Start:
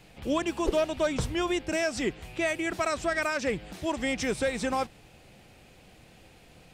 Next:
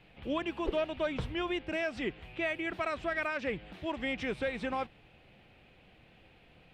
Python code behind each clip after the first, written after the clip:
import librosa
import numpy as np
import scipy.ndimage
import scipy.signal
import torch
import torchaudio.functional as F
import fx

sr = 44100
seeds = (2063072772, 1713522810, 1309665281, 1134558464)

y = fx.high_shelf_res(x, sr, hz=4500.0, db=-14.0, q=1.5)
y = y * librosa.db_to_amplitude(-6.0)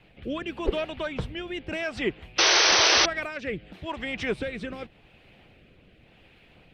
y = fx.hpss(x, sr, part='percussive', gain_db=8)
y = fx.rotary(y, sr, hz=0.9)
y = fx.spec_paint(y, sr, seeds[0], shape='noise', start_s=2.38, length_s=0.68, low_hz=310.0, high_hz=6200.0, level_db=-21.0)
y = y * librosa.db_to_amplitude(1.5)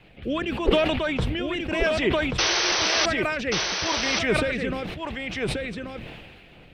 y = fx.rider(x, sr, range_db=4, speed_s=0.5)
y = y + 10.0 ** (-4.5 / 20.0) * np.pad(y, (int(1134 * sr / 1000.0), 0))[:len(y)]
y = fx.sustainer(y, sr, db_per_s=33.0)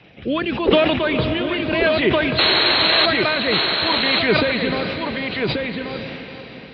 y = fx.freq_compress(x, sr, knee_hz=3800.0, ratio=4.0)
y = scipy.signal.sosfilt(scipy.signal.butter(2, 96.0, 'highpass', fs=sr, output='sos'), y)
y = fx.echo_diffused(y, sr, ms=464, feedback_pct=46, wet_db=-9.5)
y = y * librosa.db_to_amplitude(5.5)